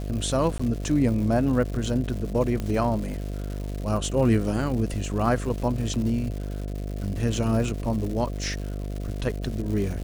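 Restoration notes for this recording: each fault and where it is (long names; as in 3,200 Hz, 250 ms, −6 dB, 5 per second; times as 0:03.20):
mains buzz 50 Hz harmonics 14 −31 dBFS
surface crackle 260 per second −33 dBFS
0:00.58–0:00.59: drop-out 15 ms
0:02.60: click −17 dBFS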